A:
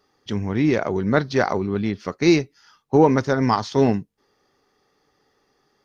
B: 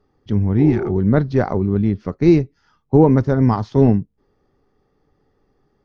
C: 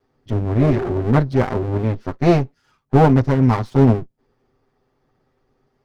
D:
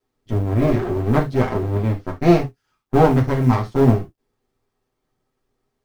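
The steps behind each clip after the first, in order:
healed spectral selection 0:00.61–0:00.89, 340–1,100 Hz after; spectral tilt −4 dB per octave; level −3 dB
lower of the sound and its delayed copy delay 7.8 ms
mu-law and A-law mismatch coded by A; reverb whose tail is shaped and stops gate 100 ms falling, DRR 2.5 dB; level −2 dB

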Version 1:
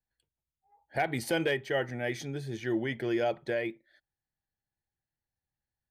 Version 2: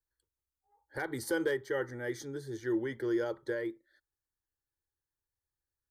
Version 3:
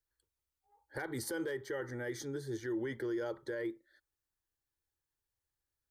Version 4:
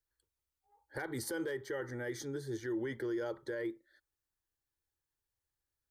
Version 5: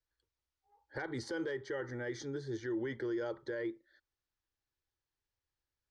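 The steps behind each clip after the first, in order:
phaser with its sweep stopped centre 690 Hz, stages 6
brickwall limiter −31 dBFS, peak gain reduction 10 dB; level +1 dB
no processing that can be heard
low-pass filter 6,000 Hz 24 dB per octave

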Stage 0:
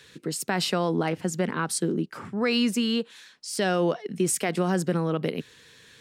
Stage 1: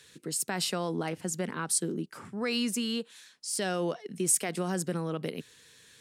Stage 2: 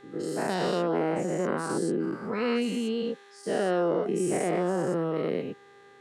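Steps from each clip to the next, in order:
parametric band 9,900 Hz +10 dB 1.5 octaves; level −7 dB
every bin's largest magnitude spread in time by 240 ms; resonant band-pass 440 Hz, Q 0.69; hum with harmonics 400 Hz, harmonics 5, −57 dBFS −4 dB per octave; level +2 dB

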